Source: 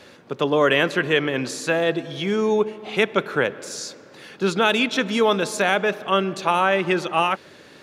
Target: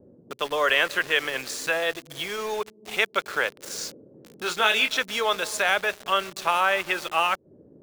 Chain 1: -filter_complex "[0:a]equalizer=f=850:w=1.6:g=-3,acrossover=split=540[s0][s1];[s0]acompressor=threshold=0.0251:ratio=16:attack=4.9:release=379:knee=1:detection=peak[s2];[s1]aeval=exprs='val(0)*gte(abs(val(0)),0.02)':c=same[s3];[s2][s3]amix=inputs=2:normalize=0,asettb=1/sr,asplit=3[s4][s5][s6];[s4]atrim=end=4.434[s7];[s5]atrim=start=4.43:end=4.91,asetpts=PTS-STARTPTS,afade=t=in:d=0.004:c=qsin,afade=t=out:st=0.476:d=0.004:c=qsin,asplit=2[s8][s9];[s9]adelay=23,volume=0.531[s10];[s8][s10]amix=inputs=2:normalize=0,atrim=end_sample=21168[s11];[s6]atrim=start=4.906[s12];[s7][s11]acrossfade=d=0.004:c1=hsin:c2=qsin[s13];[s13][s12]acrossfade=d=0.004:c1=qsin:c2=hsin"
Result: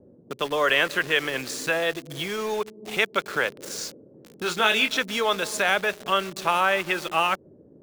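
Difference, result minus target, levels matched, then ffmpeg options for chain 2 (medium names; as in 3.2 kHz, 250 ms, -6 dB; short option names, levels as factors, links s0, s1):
compression: peak gain reduction -9 dB
-filter_complex "[0:a]equalizer=f=850:w=1.6:g=-3,acrossover=split=540[s0][s1];[s0]acompressor=threshold=0.00841:ratio=16:attack=4.9:release=379:knee=1:detection=peak[s2];[s1]aeval=exprs='val(0)*gte(abs(val(0)),0.02)':c=same[s3];[s2][s3]amix=inputs=2:normalize=0,asettb=1/sr,asplit=3[s4][s5][s6];[s4]atrim=end=4.434[s7];[s5]atrim=start=4.43:end=4.91,asetpts=PTS-STARTPTS,afade=t=in:d=0.004:c=qsin,afade=t=out:st=0.476:d=0.004:c=qsin,asplit=2[s8][s9];[s9]adelay=23,volume=0.531[s10];[s8][s10]amix=inputs=2:normalize=0,atrim=end_sample=21168[s11];[s6]atrim=start=4.906[s12];[s7][s11]acrossfade=d=0.004:c1=hsin:c2=qsin[s13];[s13][s12]acrossfade=d=0.004:c1=qsin:c2=hsin"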